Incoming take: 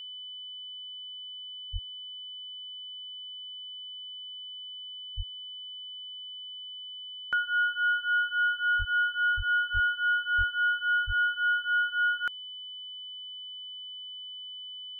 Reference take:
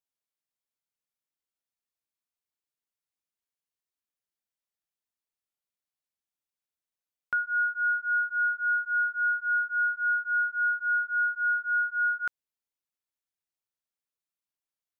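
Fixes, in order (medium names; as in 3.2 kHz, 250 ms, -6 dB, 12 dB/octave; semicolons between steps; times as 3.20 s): band-stop 3 kHz, Q 30; de-plosive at 1.72/5.16/8.78/9.36/9.73/10.37/11.06 s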